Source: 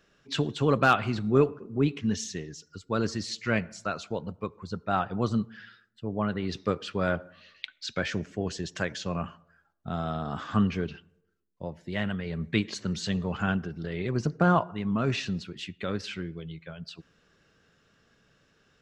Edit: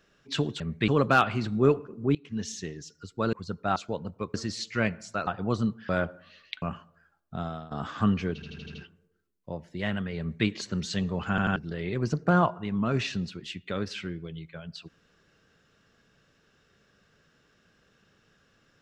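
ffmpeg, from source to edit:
-filter_complex "[0:a]asplit=19[s0][s1][s2][s3][s4][s5][s6][s7][s8][s9][s10][s11][s12][s13][s14][s15][s16][s17][s18];[s0]atrim=end=0.602[s19];[s1]atrim=start=12.318:end=12.602[s20];[s2]atrim=start=0.598:end=1.87,asetpts=PTS-STARTPTS,afade=t=out:st=1.268:d=0.004:c=hsin:silence=0.0841395[s21];[s3]atrim=start=1.87:end=3.052,asetpts=PTS-STARTPTS,afade=t=in:d=0.66:c=qsin:silence=0.0841395[s22];[s4]atrim=start=4.558:end=4.992[s23];[s5]atrim=start=3.978:end=4.562[s24];[s6]atrim=start=3.048:end=3.982[s25];[s7]atrim=start=4.988:end=5.612[s26];[s8]atrim=start=6.998:end=7.732[s27];[s9]atrim=start=9.148:end=10.24,asetpts=PTS-STARTPTS,afade=t=out:st=0.742:d=0.35:silence=0.11885[s28];[s10]atrim=start=10.24:end=10.952,asetpts=PTS-STARTPTS,afade=t=in:d=0.004:c=hsin:silence=0.11885[s29];[s11]atrim=start=10.868:end=10.952[s30];[s12]atrim=start=10.868:end=10.952[s31];[s13]atrim=start=10.868:end=10.952[s32];[s14]atrim=start=10.868:end=10.952[s33];[s15]atrim=start=10.868:end=13.512[s34];[s16]atrim=start=13.418:end=13.512[s35];[s17]atrim=start=13.418:end=13.512[s36];[s18]atrim=start=13.688[s37];[s19][s20]acrossfade=d=0.004:c1=hsin:c2=hsin[s38];[s21][s22]concat=n=2:v=0:a=1[s39];[s38][s39]acrossfade=d=0.004:c1=hsin:c2=hsin[s40];[s40][s23]acrossfade=d=0.004:c1=hsin:c2=hsin[s41];[s41][s24]acrossfade=d=0.004:c1=hsin:c2=hsin[s42];[s42][s25]acrossfade=d=0.004:c1=hsin:c2=hsin[s43];[s43][s26]acrossfade=d=0.004:c1=hsin:c2=hsin[s44];[s44][s27]acrossfade=d=0.004:c1=hsin:c2=hsin[s45];[s28][s29]concat=n=2:v=0:a=1[s46];[s45][s46]acrossfade=d=0.004:c1=hsin:c2=hsin[s47];[s47][s30]acrossfade=d=0.004:c1=hsin:c2=hsin[s48];[s48][s31]acrossfade=d=0.004:c1=hsin:c2=hsin[s49];[s49][s32]acrossfade=d=0.004:c1=hsin:c2=hsin[s50];[s50][s33]acrossfade=d=0.004:c1=hsin:c2=hsin[s51];[s51][s34]acrossfade=d=0.004:c1=hsin:c2=hsin[s52];[s52][s35]acrossfade=d=0.004:c1=hsin:c2=hsin[s53];[s53][s36]acrossfade=d=0.004:c1=hsin:c2=hsin[s54];[s54][s37]acrossfade=d=0.004:c1=hsin:c2=hsin"

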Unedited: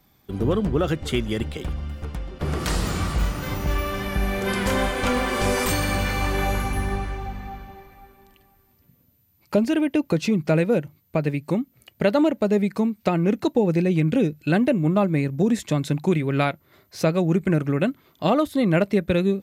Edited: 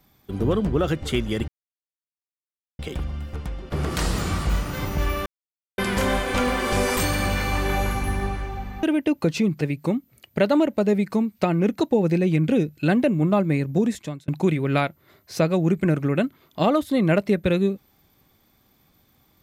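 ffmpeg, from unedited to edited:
-filter_complex "[0:a]asplit=7[s0][s1][s2][s3][s4][s5][s6];[s0]atrim=end=1.48,asetpts=PTS-STARTPTS,afade=t=out:st=1.476:d=0.004:c=hsin,apad=pad_dur=1.31[s7];[s1]atrim=start=1.48:end=3.95,asetpts=PTS-STARTPTS,afade=t=in:d=0.004:c=hsin,afade=t=out:st=2.466:d=0.004:c=hsin[s8];[s2]atrim=start=3.95:end=4.47,asetpts=PTS-STARTPTS,volume=0[s9];[s3]atrim=start=4.47:end=7.522,asetpts=PTS-STARTPTS,afade=t=in:d=0.004:c=hsin[s10];[s4]atrim=start=9.708:end=10.492[s11];[s5]atrim=start=11.248:end=15.92,asetpts=PTS-STARTPTS,afade=t=out:st=4.172:d=0.5[s12];[s6]atrim=start=15.92,asetpts=PTS-STARTPTS,afade=t=in:d=0.004:c=hsin[s13];[s7][s8][s9][s10]concat=n=4:v=0:a=1[s14];[s14][s11]acrossfade=d=0.004:c1=hsin:c2=hsin[s15];[s12][s13]concat=n=2:v=0:a=1[s16];[s15][s16]acrossfade=d=0.004:c1=hsin:c2=hsin"

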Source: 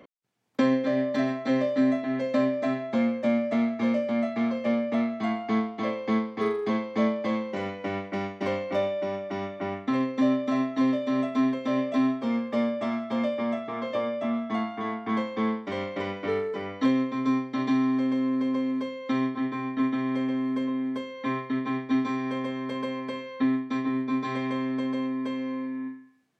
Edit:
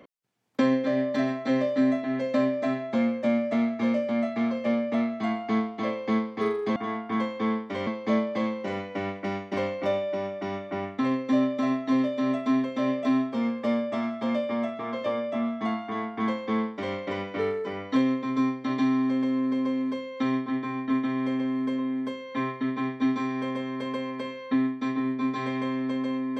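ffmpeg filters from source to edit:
-filter_complex "[0:a]asplit=3[s0][s1][s2];[s0]atrim=end=6.762[s3];[s1]atrim=start=14.728:end=15.842[s4];[s2]atrim=start=6.758[s5];[s3][s4]acrossfade=d=0.004:c1=hsin:c2=hsin[s6];[s6][s5]acrossfade=d=0.004:c1=hsin:c2=hsin"

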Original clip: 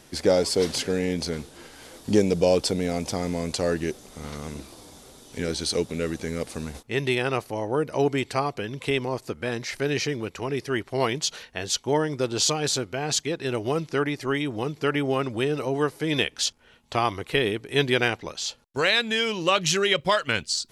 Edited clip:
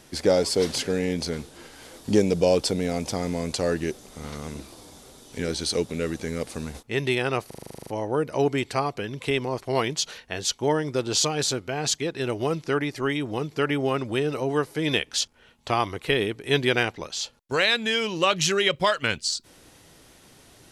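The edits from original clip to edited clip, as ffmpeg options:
-filter_complex "[0:a]asplit=12[s0][s1][s2][s3][s4][s5][s6][s7][s8][s9][s10][s11];[s0]atrim=end=7.512[s12];[s1]atrim=start=7.468:end=7.512[s13];[s2]atrim=start=7.468:end=7.512[s14];[s3]atrim=start=7.468:end=7.512[s15];[s4]atrim=start=7.468:end=7.512[s16];[s5]atrim=start=7.468:end=7.512[s17];[s6]atrim=start=7.468:end=7.512[s18];[s7]atrim=start=7.468:end=7.512[s19];[s8]atrim=start=7.468:end=7.512[s20];[s9]atrim=start=7.468:end=7.512[s21];[s10]atrim=start=7.468:end=9.212[s22];[s11]atrim=start=10.858[s23];[s12][s13]acrossfade=d=0.004:c1=hsin:c2=hsin[s24];[s24][s14]acrossfade=d=0.004:c1=hsin:c2=hsin[s25];[s25][s15]acrossfade=d=0.004:c1=hsin:c2=hsin[s26];[s26][s16]acrossfade=d=0.004:c1=hsin:c2=hsin[s27];[s27][s17]acrossfade=d=0.004:c1=hsin:c2=hsin[s28];[s28][s18]acrossfade=d=0.004:c1=hsin:c2=hsin[s29];[s29][s19]acrossfade=d=0.004:c1=hsin:c2=hsin[s30];[s30][s20]acrossfade=d=0.004:c1=hsin:c2=hsin[s31];[s31][s21]acrossfade=d=0.004:c1=hsin:c2=hsin[s32];[s32][s22]acrossfade=d=0.004:c1=hsin:c2=hsin[s33];[s33][s23]acrossfade=d=0.004:c1=hsin:c2=hsin"

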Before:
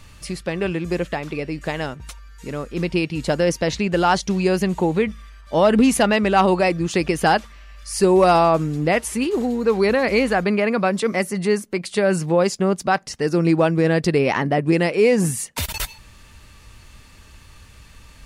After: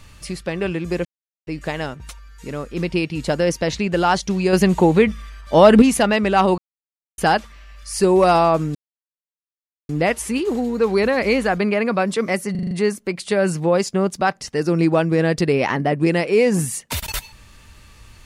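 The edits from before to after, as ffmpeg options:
-filter_complex "[0:a]asplit=13[s0][s1][s2][s3][s4][s5][s6][s7][s8][s9][s10][s11][s12];[s0]atrim=end=1.05,asetpts=PTS-STARTPTS,afade=t=out:st=1.046:d=0.004:c=hsin[s13];[s1]atrim=start=1.05:end=1.47,asetpts=PTS-STARTPTS,volume=0[s14];[s2]atrim=start=1.47:end=4.532,asetpts=PTS-STARTPTS,afade=t=in:d=0.004:c=hsin[s15];[s3]atrim=start=4.528:end=5.822,asetpts=PTS-STARTPTS,volume=1.88[s16];[s4]atrim=start=5.818:end=6.58,asetpts=PTS-STARTPTS,afade=t=out:st=0.758:d=0.004:c=hsin[s17];[s5]atrim=start=6.58:end=7.18,asetpts=PTS-STARTPTS,volume=0[s18];[s6]atrim=start=7.18:end=8.75,asetpts=PTS-STARTPTS,afade=t=in:d=0.004:c=hsin,afade=t=out:st=1.566:d=0.004:c=hsin,apad=pad_dur=1.14[s19];[s7]atrim=start=8.75:end=11.412,asetpts=PTS-STARTPTS,afade=t=in:d=0.004:c=hsin[s20];[s8]atrim=start=11.368:end=11.412[s21];[s9]atrim=start=11.368:end=11.412[s22];[s10]atrim=start=11.368:end=11.412[s23];[s11]atrim=start=11.368:end=11.412[s24];[s12]atrim=start=11.368[s25];[s13][s14][s15]concat=n=3:v=0:a=1[s26];[s26][s16]acrossfade=d=0.004:c1=hsin:c2=hsin[s27];[s17][s18][s19][s20]concat=n=4:v=0:a=1[s28];[s27][s28]acrossfade=d=0.004:c1=hsin:c2=hsin[s29];[s29][s21]acrossfade=d=0.004:c1=hsin:c2=hsin[s30];[s30][s22]acrossfade=d=0.004:c1=hsin:c2=hsin[s31];[s31][s23]acrossfade=d=0.004:c1=hsin:c2=hsin[s32];[s32][s24]acrossfade=d=0.004:c1=hsin:c2=hsin[s33];[s33][s25]acrossfade=d=0.004:c1=hsin:c2=hsin"

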